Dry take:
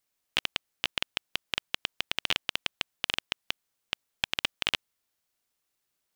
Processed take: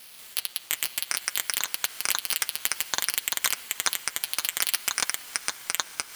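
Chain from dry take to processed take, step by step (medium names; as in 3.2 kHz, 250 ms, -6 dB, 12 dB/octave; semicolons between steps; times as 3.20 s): spectral levelling over time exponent 0.4; bass shelf 390 Hz -8.5 dB; careless resampling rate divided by 6×, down none, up zero stuff; de-hum 123.7 Hz, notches 38; ever faster or slower copies 187 ms, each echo -6 st, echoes 3; on a send: echo that smears into a reverb 454 ms, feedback 48%, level -14.5 dB; on the sum: transient shaper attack +5 dB, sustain -4 dB; flange 0.58 Hz, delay 3.8 ms, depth 2.8 ms, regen -49%; loudness maximiser -1 dB; trim -1 dB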